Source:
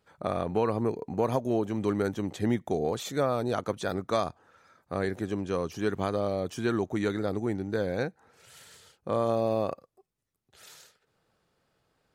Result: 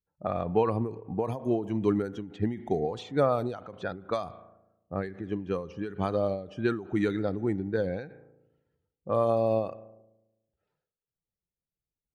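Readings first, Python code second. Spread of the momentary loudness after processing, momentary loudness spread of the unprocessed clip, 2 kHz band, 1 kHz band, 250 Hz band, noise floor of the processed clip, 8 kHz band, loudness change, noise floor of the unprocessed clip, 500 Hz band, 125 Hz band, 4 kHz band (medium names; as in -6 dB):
11 LU, 5 LU, -2.5 dB, -0.5 dB, -0.5 dB, under -85 dBFS, under -10 dB, 0.0 dB, -78 dBFS, 0.0 dB, 0.0 dB, -6.0 dB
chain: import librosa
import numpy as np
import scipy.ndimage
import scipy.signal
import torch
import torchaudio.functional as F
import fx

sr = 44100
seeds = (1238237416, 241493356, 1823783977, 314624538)

y = fx.bin_expand(x, sr, power=1.5)
y = fx.high_shelf(y, sr, hz=3800.0, db=-6.0)
y = fx.rev_spring(y, sr, rt60_s=1.2, pass_ms=(36,), chirp_ms=65, drr_db=18.5)
y = fx.env_lowpass(y, sr, base_hz=450.0, full_db=-27.0)
y = fx.end_taper(y, sr, db_per_s=110.0)
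y = y * 10.0 ** (5.0 / 20.0)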